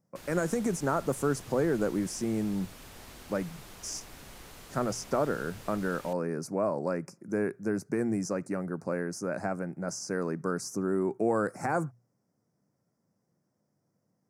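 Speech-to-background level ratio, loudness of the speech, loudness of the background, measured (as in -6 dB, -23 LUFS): 16.5 dB, -32.0 LUFS, -48.5 LUFS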